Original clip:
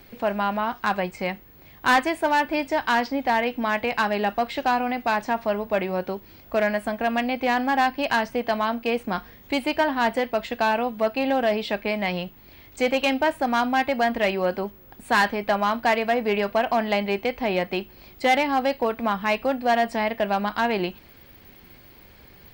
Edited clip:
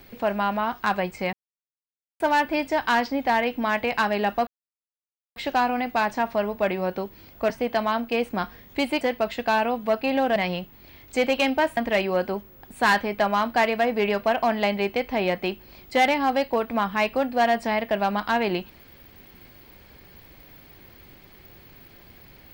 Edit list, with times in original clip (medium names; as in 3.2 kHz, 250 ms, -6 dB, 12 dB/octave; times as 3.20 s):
1.33–2.20 s: mute
4.47 s: insert silence 0.89 s
6.61–8.24 s: delete
9.75–10.14 s: delete
11.49–12.00 s: delete
13.41–14.06 s: delete